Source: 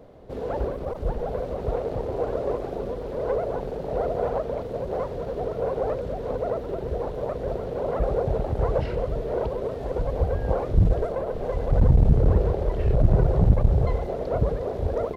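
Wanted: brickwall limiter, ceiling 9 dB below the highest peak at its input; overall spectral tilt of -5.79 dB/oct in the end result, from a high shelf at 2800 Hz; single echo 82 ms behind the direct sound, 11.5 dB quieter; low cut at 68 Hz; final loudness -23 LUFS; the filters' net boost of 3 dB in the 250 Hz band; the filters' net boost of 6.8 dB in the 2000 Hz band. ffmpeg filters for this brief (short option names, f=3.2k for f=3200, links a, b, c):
-af "highpass=68,equalizer=f=250:t=o:g=4.5,equalizer=f=2k:t=o:g=7.5,highshelf=f=2.8k:g=4,alimiter=limit=-16dB:level=0:latency=1,aecho=1:1:82:0.266,volume=4dB"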